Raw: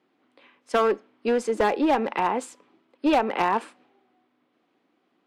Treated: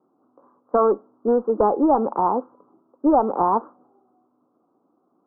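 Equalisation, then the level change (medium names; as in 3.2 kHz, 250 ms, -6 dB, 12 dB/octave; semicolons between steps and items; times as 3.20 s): steep low-pass 1.3 kHz 72 dB/octave; +4.0 dB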